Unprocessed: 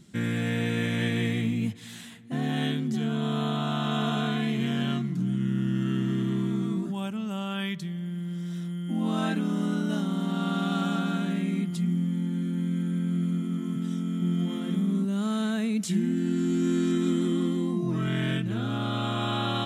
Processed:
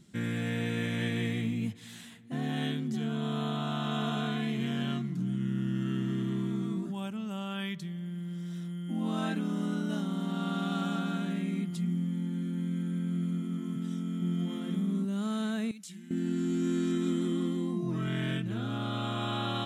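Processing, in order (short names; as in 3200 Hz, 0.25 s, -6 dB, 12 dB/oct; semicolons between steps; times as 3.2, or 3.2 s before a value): 15.71–16.11 passive tone stack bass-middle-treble 5-5-5; gain -4.5 dB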